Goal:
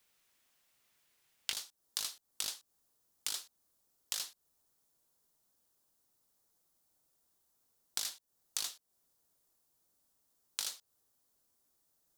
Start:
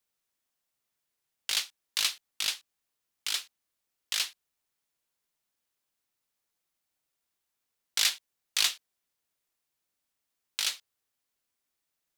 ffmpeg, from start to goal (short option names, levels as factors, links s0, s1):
-af "asetnsamples=n=441:p=0,asendcmd='1.53 equalizer g -13.5',equalizer=f=2400:t=o:w=1.5:g=3.5,acompressor=threshold=0.00708:ratio=12,volume=2.66"